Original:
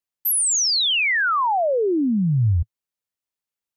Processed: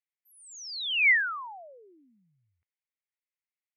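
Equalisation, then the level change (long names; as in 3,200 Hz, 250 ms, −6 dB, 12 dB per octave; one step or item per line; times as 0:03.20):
high-pass with resonance 2,100 Hz, resonance Q 4.6
head-to-tape spacing loss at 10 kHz 31 dB
−5.5 dB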